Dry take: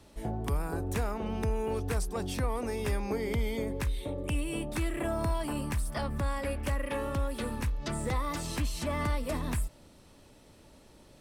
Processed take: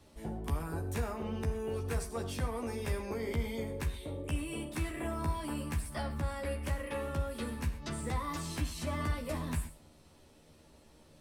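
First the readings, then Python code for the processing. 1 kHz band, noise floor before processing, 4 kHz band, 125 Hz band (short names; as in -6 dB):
-4.0 dB, -57 dBFS, -3.5 dB, -2.5 dB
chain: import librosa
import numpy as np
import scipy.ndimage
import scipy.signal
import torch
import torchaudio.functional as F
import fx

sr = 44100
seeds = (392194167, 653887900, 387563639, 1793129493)

y = fx.doubler(x, sr, ms=13.0, db=-4.0)
y = fx.rev_gated(y, sr, seeds[0], gate_ms=150, shape='flat', drr_db=9.0)
y = y * librosa.db_to_amplitude(-5.5)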